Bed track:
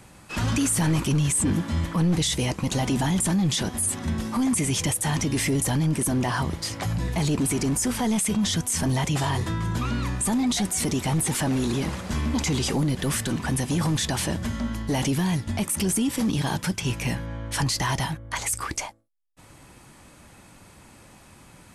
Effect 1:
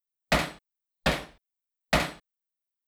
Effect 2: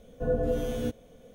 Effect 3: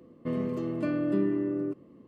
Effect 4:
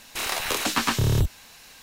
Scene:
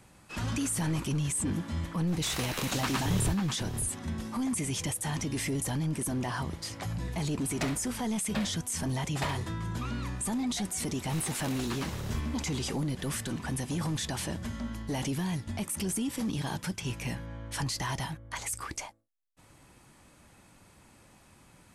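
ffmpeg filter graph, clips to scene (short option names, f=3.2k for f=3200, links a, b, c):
-filter_complex "[4:a]asplit=2[a][b];[0:a]volume=-8dB[c];[a]asplit=2[d][e];[e]adelay=542.3,volume=-7dB,highshelf=f=4k:g=-12.2[f];[d][f]amix=inputs=2:normalize=0,atrim=end=1.82,asetpts=PTS-STARTPTS,volume=-9dB,afade=t=in:d=0.004:c=hsin,afade=t=out:st=1.816:d=0.004:c=hsin,adelay=2070[g];[1:a]atrim=end=2.87,asetpts=PTS-STARTPTS,volume=-11.5dB,afade=t=in:d=0.004:c=hsin,afade=t=out:st=2.866:d=0.004:c=hsin,adelay=7290[h];[b]atrim=end=1.82,asetpts=PTS-STARTPTS,volume=-16dB,afade=t=in:d=0.004:c=hsin,afade=t=out:st=1.816:d=0.004:c=hsin,adelay=10940[i];[c][g][h][i]amix=inputs=4:normalize=0"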